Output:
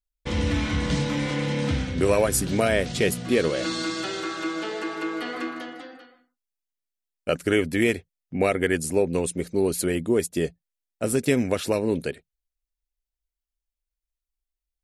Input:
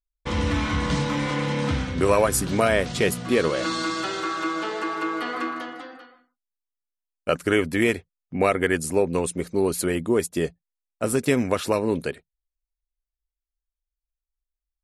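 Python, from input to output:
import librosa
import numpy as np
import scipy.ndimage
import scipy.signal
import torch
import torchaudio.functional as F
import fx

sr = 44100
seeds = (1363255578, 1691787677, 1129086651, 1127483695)

y = fx.peak_eq(x, sr, hz=1100.0, db=-8.0, octaves=0.81)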